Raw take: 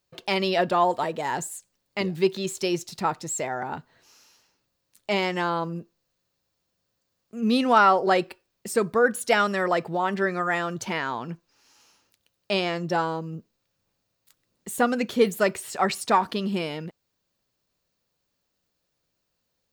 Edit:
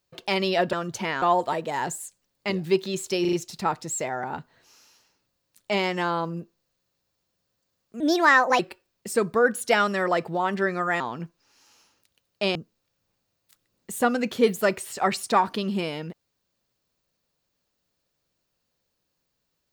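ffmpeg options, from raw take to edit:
-filter_complex "[0:a]asplit=10[s0][s1][s2][s3][s4][s5][s6][s7][s8][s9];[s0]atrim=end=0.732[s10];[s1]atrim=start=10.598:end=11.092[s11];[s2]atrim=start=0.728:end=2.762[s12];[s3]atrim=start=2.718:end=2.762[s13];[s4]atrim=start=2.718:end=2.762[s14];[s5]atrim=start=2.718:end=7.394[s15];[s6]atrim=start=7.39:end=8.19,asetpts=PTS-STARTPTS,asetrate=59535,aresample=44100,atrim=end_sample=26133,asetpts=PTS-STARTPTS[s16];[s7]atrim=start=8.186:end=10.602[s17];[s8]atrim=start=11.088:end=12.642[s18];[s9]atrim=start=13.328[s19];[s10][s11]acrossfade=d=0.004:c1=hsin:c2=hsin[s20];[s20][s12]acrossfade=d=0.004:c1=hsin:c2=hsin[s21];[s21][s13]acrossfade=d=0.004:c1=hsin:c2=hsin[s22];[s22][s14]acrossfade=d=0.004:c1=hsin:c2=hsin[s23];[s23][s15]acrossfade=d=0.004:c1=hsin:c2=hsin[s24];[s24][s16]acrossfade=d=0.004:c1=hsin:c2=hsin[s25];[s25][s17]acrossfade=d=0.004:c1=hsin:c2=hsin[s26];[s26][s18]acrossfade=d=0.004:c1=hsin:c2=hsin[s27];[s27][s19]acrossfade=d=0.004:c1=hsin:c2=hsin"

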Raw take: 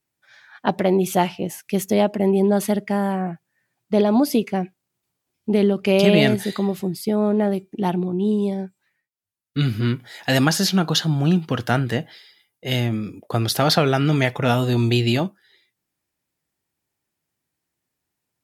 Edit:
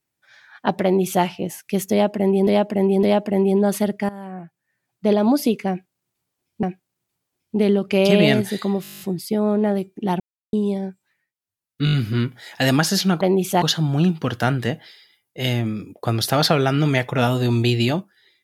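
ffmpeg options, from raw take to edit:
-filter_complex "[0:a]asplit=22[s0][s1][s2][s3][s4][s5][s6][s7][s8][s9][s10][s11][s12][s13][s14][s15][s16][s17][s18][s19][s20][s21];[s0]atrim=end=2.472[s22];[s1]atrim=start=1.908:end=2.472[s23];[s2]atrim=start=1.908:end=2.97,asetpts=PTS-STARTPTS,afade=t=out:st=1.058:d=0.004:c=hsin:silence=0.141254[s24];[s3]atrim=start=2.97:end=5.512,asetpts=PTS-STARTPTS,afade=t=in:d=1.03:silence=0.141254[s25];[s4]atrim=start=4.568:end=6.782[s26];[s5]atrim=start=6.758:end=6.782[s27];[s6]atrim=start=6.758:end=6.782[s28];[s7]atrim=start=6.758:end=6.782[s29];[s8]atrim=start=6.758:end=6.782[s30];[s9]atrim=start=6.758:end=6.782[s31];[s10]atrim=start=6.758:end=6.782[s32];[s11]atrim=start=6.758:end=6.782[s33];[s12]atrim=start=6.758:end=6.782[s34];[s13]atrim=start=6.758:end=7.96,asetpts=PTS-STARTPTS,afade=t=out:st=1.198:d=0.004:c=hsin[s35];[s14]atrim=start=7.96:end=8.29,asetpts=PTS-STARTPTS,volume=0[s36];[s15]atrim=start=8.29:end=9.632,asetpts=PTS-STARTPTS,afade=t=in:d=0.004:c=hsin[s37];[s16]atrim=start=9.608:end=9.632[s38];[s17]atrim=start=9.608:end=9.632[s39];[s18]atrim=start=9.608:end=9.632[s40];[s19]atrim=start=9.608:end=10.892[s41];[s20]atrim=start=0.828:end=1.242[s42];[s21]atrim=start=10.888[s43];[s22][s23]acrossfade=d=0.004:c1=hsin:c2=hsin[s44];[s24][s25]concat=n=2:v=0:a=1[s45];[s44][s45]acrossfade=d=0.004:c1=hsin:c2=hsin[s46];[s46][s26]acrossfade=d=0.004:c1=hsin:c2=hsin[s47];[s47][s27]acrossfade=d=0.004:c1=hsin:c2=hsin[s48];[s48][s28]acrossfade=d=0.004:c1=hsin:c2=hsin[s49];[s49][s29]acrossfade=d=0.004:c1=hsin:c2=hsin[s50];[s50][s30]acrossfade=d=0.004:c1=hsin:c2=hsin[s51];[s51][s31]acrossfade=d=0.004:c1=hsin:c2=hsin[s52];[s52][s32]acrossfade=d=0.004:c1=hsin:c2=hsin[s53];[s53][s33]acrossfade=d=0.004:c1=hsin:c2=hsin[s54];[s54][s34]acrossfade=d=0.004:c1=hsin:c2=hsin[s55];[s35][s36][s37]concat=n=3:v=0:a=1[s56];[s55][s56]acrossfade=d=0.004:c1=hsin:c2=hsin[s57];[s57][s38]acrossfade=d=0.004:c1=hsin:c2=hsin[s58];[s58][s39]acrossfade=d=0.004:c1=hsin:c2=hsin[s59];[s59][s40]acrossfade=d=0.004:c1=hsin:c2=hsin[s60];[s60][s41]acrossfade=d=0.004:c1=hsin:c2=hsin[s61];[s61][s42]acrossfade=d=0.004:c1=hsin:c2=hsin[s62];[s62][s43]acrossfade=d=0.004:c1=hsin:c2=hsin"

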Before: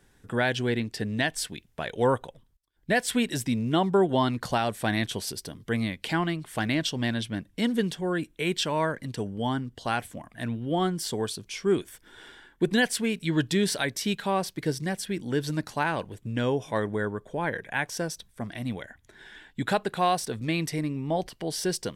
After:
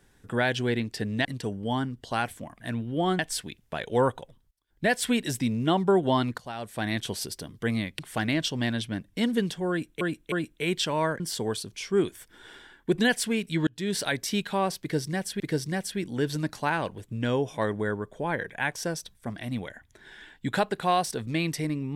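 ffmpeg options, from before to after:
-filter_complex "[0:a]asplit=10[s0][s1][s2][s3][s4][s5][s6][s7][s8][s9];[s0]atrim=end=1.252[s10];[s1]atrim=start=8.988:end=10.932[s11];[s2]atrim=start=1.248:end=4.44,asetpts=PTS-STARTPTS,afade=t=out:st=3.188:d=0.004:c=hsin:silence=0.105925[s12];[s3]atrim=start=4.44:end=6.052,asetpts=PTS-STARTPTS,afade=t=in:d=0.72:silence=0.105925[s13];[s4]atrim=start=6.398:end=8.422[s14];[s5]atrim=start=8.108:end=8.422[s15];[s6]atrim=start=8.108:end=8.992[s16];[s7]atrim=start=10.928:end=13.4,asetpts=PTS-STARTPTS,afade=t=out:st=2.468:d=0.004:c=hsin[s17];[s8]atrim=start=13.4:end=15.132,asetpts=PTS-STARTPTS,afade=t=in:d=0.37[s18];[s9]atrim=start=14.538[s19];[s10][s11]acrossfade=d=0.004:c1=hsin:c2=hsin[s20];[s12][s13]concat=n=2:v=0:a=1[s21];[s20][s21]acrossfade=d=0.004:c1=hsin:c2=hsin[s22];[s22][s14]acrossfade=d=0.004:c1=hsin:c2=hsin[s23];[s23][s15]acrossfade=d=0.004:c1=hsin:c2=hsin[s24];[s24][s16]acrossfade=d=0.004:c1=hsin:c2=hsin[s25];[s17][s18]concat=n=2:v=0:a=1[s26];[s25][s26]acrossfade=d=0.004:c1=hsin:c2=hsin[s27];[s27][s19]acrossfade=d=0.004:c1=hsin:c2=hsin"

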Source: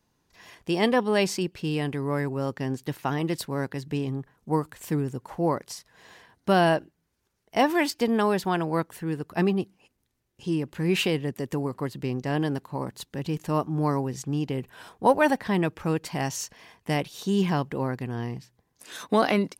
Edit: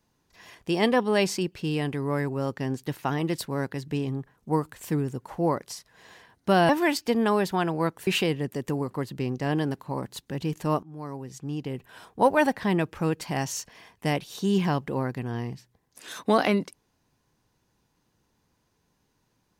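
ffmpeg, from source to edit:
-filter_complex "[0:a]asplit=4[s0][s1][s2][s3];[s0]atrim=end=6.692[s4];[s1]atrim=start=7.618:end=9.002[s5];[s2]atrim=start=10.908:end=13.67,asetpts=PTS-STARTPTS,afade=t=out:st=2.758:d=0.004:c=hsin:silence=0.0891251[s6];[s3]atrim=start=13.67,asetpts=PTS-STARTPTS,afade=t=in:d=1.95:c=qsin:silence=0.0891251[s7];[s4][s5]acrossfade=d=0.004:c1=hsin:c2=hsin[s8];[s6][s7]concat=n=2:v=0:a=1[s9];[s8][s9]acrossfade=d=0.004:c1=hsin:c2=hsin"

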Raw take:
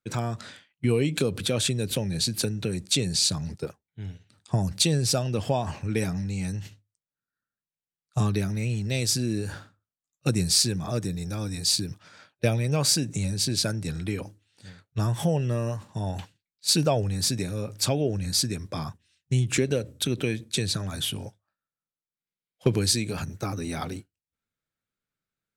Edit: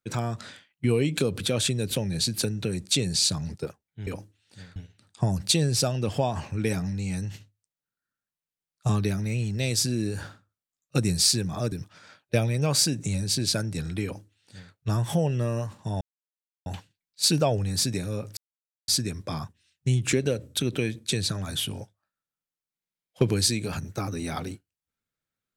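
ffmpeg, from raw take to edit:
-filter_complex "[0:a]asplit=7[s0][s1][s2][s3][s4][s5][s6];[s0]atrim=end=4.072[s7];[s1]atrim=start=14.138:end=14.832[s8];[s2]atrim=start=4.068:end=11.032[s9];[s3]atrim=start=11.818:end=16.11,asetpts=PTS-STARTPTS,afade=t=out:st=4.288:d=0.004:c=hsin,apad=pad_dur=0.65[s10];[s4]atrim=start=16.11:end=17.82,asetpts=PTS-STARTPTS,afade=t=in:d=0.004:c=hsin,afade=t=out:st=1.706:d=0.004:c=hsin[s11];[s5]atrim=start=17.82:end=18.33,asetpts=PTS-STARTPTS,volume=0[s12];[s6]atrim=start=18.33,asetpts=PTS-STARTPTS,afade=t=in:d=0.004:c=hsin[s13];[s7][s8]acrossfade=d=0.004:c1=hsin:c2=hsin[s14];[s14][s9]acrossfade=d=0.004:c1=hsin:c2=hsin[s15];[s10][s11][s12][s13]concat=n=4:v=0:a=1[s16];[s15][s16]acrossfade=d=0.004:c1=hsin:c2=hsin"

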